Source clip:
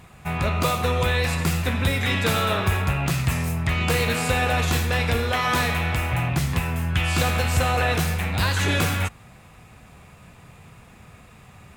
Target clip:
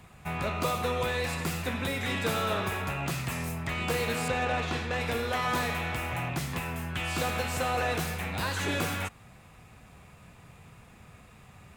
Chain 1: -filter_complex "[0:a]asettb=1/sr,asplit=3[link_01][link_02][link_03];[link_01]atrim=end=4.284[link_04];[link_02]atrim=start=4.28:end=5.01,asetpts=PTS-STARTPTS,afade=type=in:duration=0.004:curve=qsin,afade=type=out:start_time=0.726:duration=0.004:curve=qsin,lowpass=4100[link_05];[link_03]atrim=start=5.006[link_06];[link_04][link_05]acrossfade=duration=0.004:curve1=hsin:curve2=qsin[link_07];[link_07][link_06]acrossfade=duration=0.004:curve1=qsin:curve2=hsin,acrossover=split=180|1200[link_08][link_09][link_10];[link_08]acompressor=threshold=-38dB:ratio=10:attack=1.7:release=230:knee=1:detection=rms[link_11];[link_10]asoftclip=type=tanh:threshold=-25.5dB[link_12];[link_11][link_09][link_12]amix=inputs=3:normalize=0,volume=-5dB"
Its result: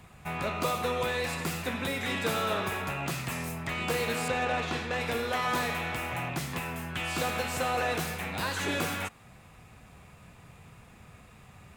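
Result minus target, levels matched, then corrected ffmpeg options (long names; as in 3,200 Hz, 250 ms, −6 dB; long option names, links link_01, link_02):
downward compressor: peak gain reduction +6.5 dB
-filter_complex "[0:a]asettb=1/sr,asplit=3[link_01][link_02][link_03];[link_01]atrim=end=4.284[link_04];[link_02]atrim=start=4.28:end=5.01,asetpts=PTS-STARTPTS,afade=type=in:duration=0.004:curve=qsin,afade=type=out:start_time=0.726:duration=0.004:curve=qsin,lowpass=4100[link_05];[link_03]atrim=start=5.006[link_06];[link_04][link_05]acrossfade=duration=0.004:curve1=hsin:curve2=qsin[link_07];[link_07][link_06]acrossfade=duration=0.004:curve1=qsin:curve2=hsin,acrossover=split=180|1200[link_08][link_09][link_10];[link_08]acompressor=threshold=-30.5dB:ratio=10:attack=1.7:release=230:knee=1:detection=rms[link_11];[link_10]asoftclip=type=tanh:threshold=-25.5dB[link_12];[link_11][link_09][link_12]amix=inputs=3:normalize=0,volume=-5dB"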